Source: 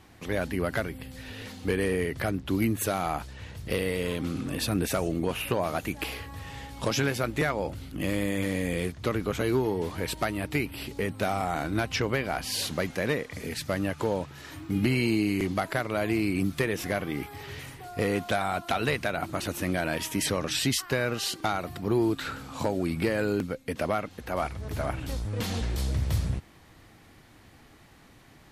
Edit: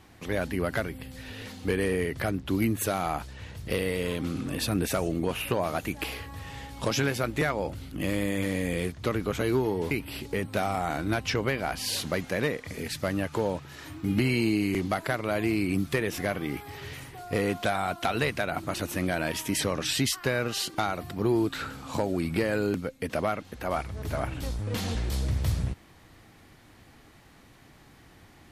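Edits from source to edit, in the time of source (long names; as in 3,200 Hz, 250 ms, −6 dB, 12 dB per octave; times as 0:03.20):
0:09.91–0:10.57: remove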